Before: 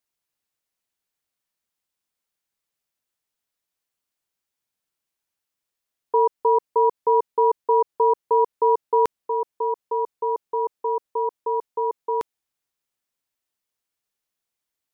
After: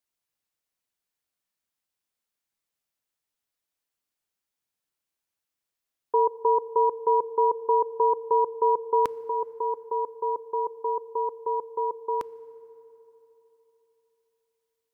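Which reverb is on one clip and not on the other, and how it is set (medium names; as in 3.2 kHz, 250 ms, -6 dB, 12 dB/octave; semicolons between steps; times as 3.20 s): FDN reverb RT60 3.6 s, high-frequency decay 0.5×, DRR 18 dB; trim -2.5 dB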